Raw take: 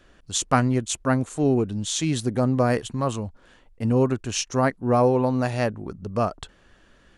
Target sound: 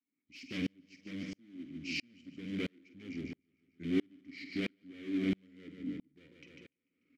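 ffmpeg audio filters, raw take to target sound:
-filter_complex "[0:a]highpass=95,equalizer=f=4500:w=7:g=-15,volume=9.44,asoftclip=hard,volume=0.106,asetrate=33038,aresample=44100,atempo=1.33484,asplit=2[s0][s1];[s1]aeval=exprs='(mod(10*val(0)+1,2)-1)/10':c=same,volume=0.447[s2];[s0][s2]amix=inputs=2:normalize=0,asplit=3[s3][s4][s5];[s3]bandpass=f=270:t=q:w=8,volume=1[s6];[s4]bandpass=f=2290:t=q:w=8,volume=0.501[s7];[s5]bandpass=f=3010:t=q:w=8,volume=0.355[s8];[s6][s7][s8]amix=inputs=3:normalize=0,asplit=2[s9][s10];[s10]adelay=48,volume=0.251[s11];[s9][s11]amix=inputs=2:normalize=0,asplit=2[s12][s13];[s13]aecho=0:1:147|294|441|588|735|882:0.316|0.164|0.0855|0.0445|0.0231|0.012[s14];[s12][s14]amix=inputs=2:normalize=0,aeval=exprs='val(0)*pow(10,-39*if(lt(mod(-1.5*n/s,1),2*abs(-1.5)/1000),1-mod(-1.5*n/s,1)/(2*abs(-1.5)/1000),(mod(-1.5*n/s,1)-2*abs(-1.5)/1000)/(1-2*abs(-1.5)/1000))/20)':c=same,volume=2.24"

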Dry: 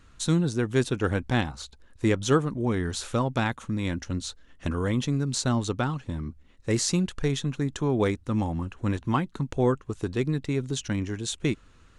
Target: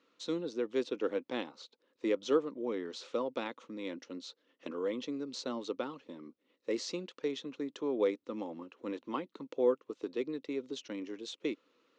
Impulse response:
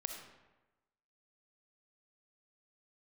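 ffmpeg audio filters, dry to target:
-af "highpass=f=270:w=0.5412,highpass=f=270:w=1.3066,equalizer=f=290:t=q:w=4:g=3,equalizer=f=500:t=q:w=4:g=9,equalizer=f=750:t=q:w=4:g=-6,equalizer=f=1600:t=q:w=4:g=-8,lowpass=f=5300:w=0.5412,lowpass=f=5300:w=1.3066,volume=0.355"

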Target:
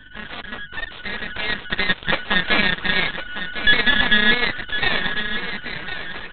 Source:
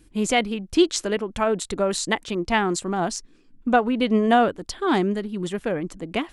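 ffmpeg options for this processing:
-filter_complex "[0:a]afftfilt=real='real(if(lt(b,272),68*(eq(floor(b/68),0)*1+eq(floor(b/68),1)*0+eq(floor(b/68),2)*3+eq(floor(b/68),3)*2)+mod(b,68),b),0)':imag='imag(if(lt(b,272),68*(eq(floor(b/68),0)*1+eq(floor(b/68),1)*0+eq(floor(b/68),2)*3+eq(floor(b/68),3)*2)+mod(b,68),b),0)':win_size=2048:overlap=0.75,highpass=f=89:w=0.5412,highpass=f=89:w=1.3066,alimiter=limit=0.133:level=0:latency=1:release=44,dynaudnorm=f=220:g=13:m=3.98,tremolo=f=30:d=0.261,asplit=2[s0][s1];[s1]highpass=f=720:p=1,volume=3.16,asoftclip=type=tanh:threshold=0.224[s2];[s0][s2]amix=inputs=2:normalize=0,lowpass=f=1700:p=1,volume=0.501,asplit=2[s3][s4];[s4]adelay=13,volume=0.237[s5];[s3][s5]amix=inputs=2:normalize=0,aeval=exprs='0.2*(cos(1*acos(clip(val(0)/0.2,-1,1)))-cos(1*PI/2))+0.0141*(cos(2*acos(clip(val(0)/0.2,-1,1)))-cos(2*PI/2))+0.0708*(cos(4*acos(clip(val(0)/0.2,-1,1)))-cos(4*PI/2))+0.0126*(cos(5*acos(clip(val(0)/0.2,-1,1)))-cos(5*PI/2))+0.0891*(cos(7*acos(clip(val(0)/0.2,-1,1)))-cos(7*PI/2))':c=same,aresample=8000,aeval=exprs='max(val(0),0)':c=same,aresample=44100,aecho=1:1:1054:0.299,aeval=exprs='val(0)+0.00126*(sin(2*PI*50*n/s)+sin(2*PI*2*50*n/s)/2+sin(2*PI*3*50*n/s)/3+sin(2*PI*4*50*n/s)/4+sin(2*PI*5*50*n/s)/5)':c=same,volume=2.11"

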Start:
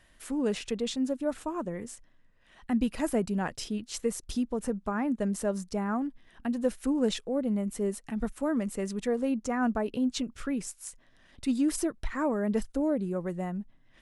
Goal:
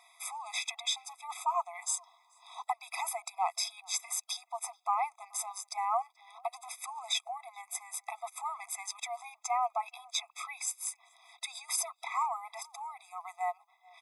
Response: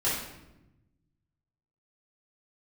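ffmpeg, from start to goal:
-filter_complex "[0:a]asettb=1/sr,asplit=3[s0][s1][s2];[s0]atrim=end=1.824[s3];[s1]atrim=start=1.82:end=2.72,asetpts=PTS-STARTPTS,afade=t=in:d=0.004:c=qsin,afade=t=out:st=0.896:d=0.004:c=qsin,equalizer=f=250:t=o:w=1:g=3,equalizer=f=1000:t=o:w=1:g=11,equalizer=f=2000:t=o:w=1:g=-8,equalizer=f=4000:t=o:w=1:g=9,equalizer=f=8000:t=o:w=1:g=8[s4];[s2]atrim=start=2.716[s5];[s3][s4]acrossfade=d=0.004:c1=hsin:c2=qsin[s6];[s6][s5]acrossfade=d=0.004:c1=qsin:c2=hsin,alimiter=level_in=1.26:limit=0.0631:level=0:latency=1:release=14,volume=0.794,lowshelf=f=450:g=6,asplit=2[s7][s8];[s8]adelay=431.5,volume=0.0501,highshelf=f=4000:g=-9.71[s9];[s7][s9]amix=inputs=2:normalize=0,afftfilt=real='re*eq(mod(floor(b*sr/1024/660),2),1)':imag='im*eq(mod(floor(b*sr/1024/660),2),1)':win_size=1024:overlap=0.75,volume=2.66"

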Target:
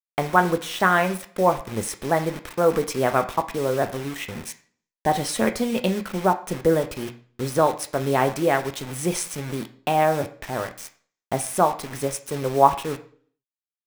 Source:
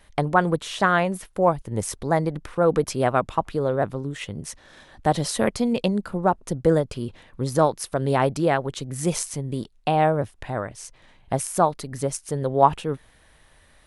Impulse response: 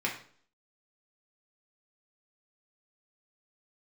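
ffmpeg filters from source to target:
-filter_complex "[0:a]acrusher=bits=5:mix=0:aa=0.000001,asettb=1/sr,asplit=3[s0][s1][s2];[s0]atrim=end=4.474[s3];[s1]atrim=start=4.47:end=5.1,asetpts=PTS-STARTPTS,afade=t=in:d=0.004:c=qsin,afade=t=out:st=0.626:d=0.004:c=qsin,asuperstop=centerf=1300:order=4:qfactor=3.8[s4];[s2]atrim=start=5.096[s5];[s3][s4]acrossfade=d=0.004:c1=hsin:c2=qsin[s6];[s6][s5]acrossfade=d=0.004:c1=qsin:c2=hsin,asplit=2[s7][s8];[1:a]atrim=start_sample=2205,lowshelf=f=180:g=-10[s9];[s8][s9]afir=irnorm=-1:irlink=0,volume=0.376[s10];[s7][s10]amix=inputs=2:normalize=0,volume=0.75"

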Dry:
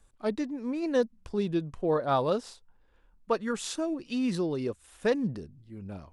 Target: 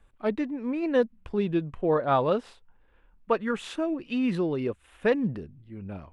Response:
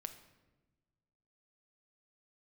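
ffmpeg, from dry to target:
-af "highshelf=f=3800:t=q:w=1.5:g=-11,volume=1.33"

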